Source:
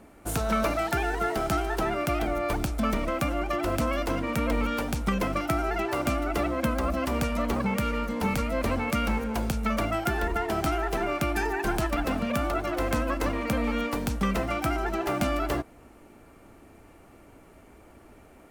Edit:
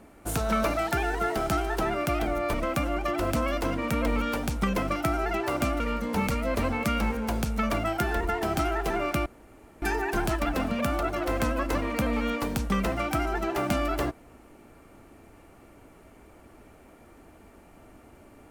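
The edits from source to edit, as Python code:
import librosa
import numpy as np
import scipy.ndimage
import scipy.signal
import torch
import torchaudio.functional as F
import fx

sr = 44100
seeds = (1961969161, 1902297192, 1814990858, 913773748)

y = fx.edit(x, sr, fx.cut(start_s=2.54, length_s=0.45),
    fx.cut(start_s=6.25, length_s=1.62),
    fx.insert_room_tone(at_s=11.33, length_s=0.56), tone=tone)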